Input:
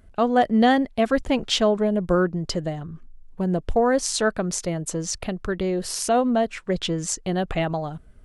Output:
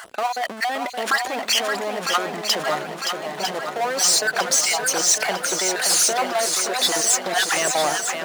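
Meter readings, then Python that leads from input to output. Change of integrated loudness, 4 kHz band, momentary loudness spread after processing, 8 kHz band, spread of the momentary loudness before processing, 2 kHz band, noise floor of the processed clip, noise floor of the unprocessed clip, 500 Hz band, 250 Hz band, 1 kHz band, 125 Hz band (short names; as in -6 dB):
+3.0 dB, +9.0 dB, 9 LU, +12.0 dB, 9 LU, +8.0 dB, -34 dBFS, -50 dBFS, -3.0 dB, -12.0 dB, +2.5 dB, -14.0 dB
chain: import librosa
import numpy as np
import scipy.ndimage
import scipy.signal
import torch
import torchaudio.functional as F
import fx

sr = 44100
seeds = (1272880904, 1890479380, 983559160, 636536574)

y = fx.spec_dropout(x, sr, seeds[0], share_pct=37)
y = fx.over_compress(y, sr, threshold_db=-28.0, ratio=-1.0)
y = fx.power_curve(y, sr, exponent=0.5)
y = scipy.signal.sosfilt(scipy.signal.butter(2, 600.0, 'highpass', fs=sr, output='sos'), y)
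y = fx.echo_swing(y, sr, ms=952, ratio=1.5, feedback_pct=60, wet_db=-6.5)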